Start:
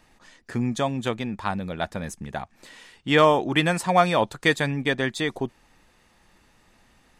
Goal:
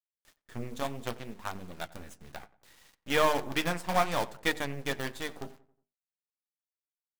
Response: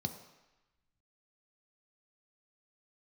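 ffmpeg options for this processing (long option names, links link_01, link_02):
-filter_complex "[0:a]bandreject=frequency=50:width_type=h:width=6,bandreject=frequency=100:width_type=h:width=6,bandreject=frequency=150:width_type=h:width=6,bandreject=frequency=200:width_type=h:width=6,bandreject=frequency=250:width_type=h:width=6,bandreject=frequency=300:width_type=h:width=6,bandreject=frequency=350:width_type=h:width=6,bandreject=frequency=400:width_type=h:width=6,bandreject=frequency=450:width_type=h:width=6,aeval=exprs='0.631*(cos(1*acos(clip(val(0)/0.631,-1,1)))-cos(1*PI/2))+0.0708*(cos(2*acos(clip(val(0)/0.631,-1,1)))-cos(2*PI/2))+0.0251*(cos(5*acos(clip(val(0)/0.631,-1,1)))-cos(5*PI/2))+0.0562*(cos(6*acos(clip(val(0)/0.631,-1,1)))-cos(6*PI/2))+0.0398*(cos(7*acos(clip(val(0)/0.631,-1,1)))-cos(7*PI/2))':channel_layout=same,acrusher=bits=5:dc=4:mix=0:aa=0.000001,flanger=delay=2.7:depth=8.9:regen=-60:speed=0.66:shape=triangular,asplit=2[link_01][link_02];[link_02]adelay=91,lowpass=frequency=2000:poles=1,volume=-18.5dB,asplit=2[link_03][link_04];[link_04]adelay=91,lowpass=frequency=2000:poles=1,volume=0.45,asplit=2[link_05][link_06];[link_06]adelay=91,lowpass=frequency=2000:poles=1,volume=0.45,asplit=2[link_07][link_08];[link_08]adelay=91,lowpass=frequency=2000:poles=1,volume=0.45[link_09];[link_03][link_05][link_07][link_09]amix=inputs=4:normalize=0[link_10];[link_01][link_10]amix=inputs=2:normalize=0,volume=-4dB"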